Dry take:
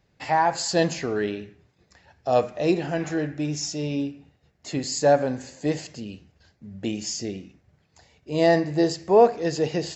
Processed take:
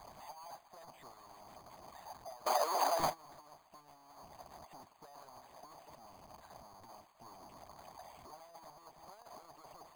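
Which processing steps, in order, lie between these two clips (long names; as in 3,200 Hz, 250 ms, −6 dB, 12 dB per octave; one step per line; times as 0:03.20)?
sign of each sample alone
0:02.46–0:03.00: high-pass filter 340 Hz 24 dB per octave
noise gate with hold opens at −21 dBFS
harmonic and percussive parts rebalanced harmonic −17 dB
flat-topped bell 850 Hz +15.5 dB 1.1 octaves
bad sample-rate conversion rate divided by 8×, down filtered, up hold
level −9 dB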